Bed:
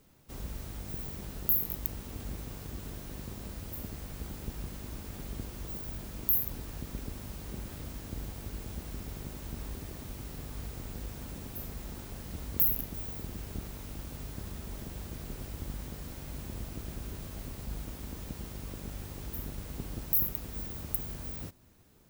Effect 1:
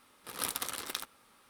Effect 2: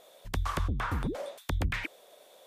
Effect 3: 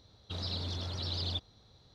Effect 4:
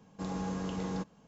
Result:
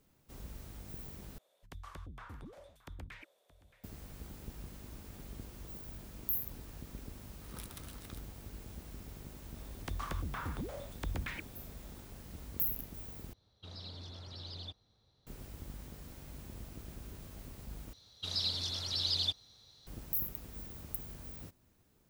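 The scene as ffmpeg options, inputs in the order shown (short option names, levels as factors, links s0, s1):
-filter_complex "[2:a]asplit=2[s0][s1];[3:a]asplit=2[s2][s3];[0:a]volume=0.422[s4];[s0]aecho=1:1:622:0.133[s5];[1:a]acrossover=split=1700[s6][s7];[s6]aeval=exprs='val(0)*(1-0.7/2+0.7/2*cos(2*PI*7.4*n/s))':c=same[s8];[s7]aeval=exprs='val(0)*(1-0.7/2-0.7/2*cos(2*PI*7.4*n/s))':c=same[s9];[s8][s9]amix=inputs=2:normalize=0[s10];[s3]crystalizer=i=7:c=0[s11];[s4]asplit=4[s12][s13][s14][s15];[s12]atrim=end=1.384[s16];[s5]atrim=end=2.46,asetpts=PTS-STARTPTS,volume=0.133[s17];[s13]atrim=start=3.836:end=13.334[s18];[s2]atrim=end=1.94,asetpts=PTS-STARTPTS,volume=0.299[s19];[s14]atrim=start=15.266:end=17.934[s20];[s11]atrim=end=1.94,asetpts=PTS-STARTPTS,volume=0.422[s21];[s15]atrim=start=19.866[s22];[s10]atrim=end=1.49,asetpts=PTS-STARTPTS,volume=0.237,afade=t=in:d=0.004:c=hsin,afade=t=out:st=1.486:d=0.004:c=hsin,adelay=7150[s23];[s1]atrim=end=2.46,asetpts=PTS-STARTPTS,volume=0.398,afade=t=in:d=0.004:c=hsin,afade=t=out:st=2.456:d=0.004:c=hsin,adelay=420714S[s24];[s16][s17]acrossfade=d=0.004:c1=hsin:c2=hsin[s25];[s25][s18]acrossfade=d=0.004:c1=hsin:c2=hsin[s26];[s26][s19]acrossfade=d=0.004:c1=hsin:c2=hsin[s27];[s27][s20]acrossfade=d=0.004:c1=hsin:c2=hsin[s28];[s28][s21]acrossfade=d=0.004:c1=hsin:c2=hsin[s29];[s29][s22]acrossfade=d=0.004:c1=hsin:c2=hsin[s30];[s30][s23][s24]amix=inputs=3:normalize=0"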